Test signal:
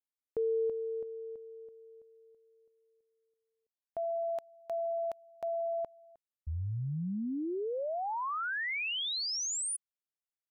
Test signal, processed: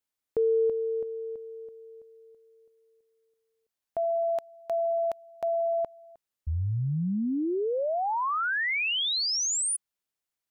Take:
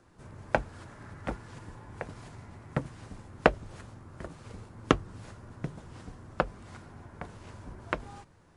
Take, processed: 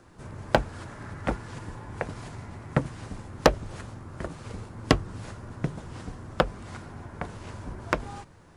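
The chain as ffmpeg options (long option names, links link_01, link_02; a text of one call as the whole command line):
ffmpeg -i in.wav -af "aeval=exprs='0.282*(abs(mod(val(0)/0.282+3,4)-2)-1)':channel_layout=same,acontrast=75" out.wav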